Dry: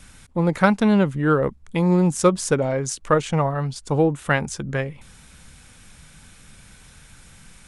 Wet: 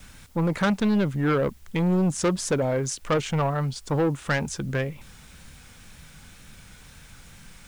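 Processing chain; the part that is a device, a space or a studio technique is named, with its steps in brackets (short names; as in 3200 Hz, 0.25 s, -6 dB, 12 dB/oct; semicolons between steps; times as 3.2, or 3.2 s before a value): compact cassette (soft clip -17.5 dBFS, distortion -10 dB; LPF 8200 Hz 12 dB/oct; wow and flutter; white noise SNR 34 dB)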